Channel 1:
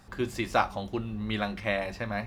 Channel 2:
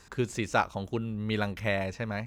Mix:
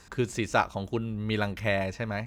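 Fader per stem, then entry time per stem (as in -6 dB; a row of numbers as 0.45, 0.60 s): -14.5, +1.5 dB; 0.00, 0.00 s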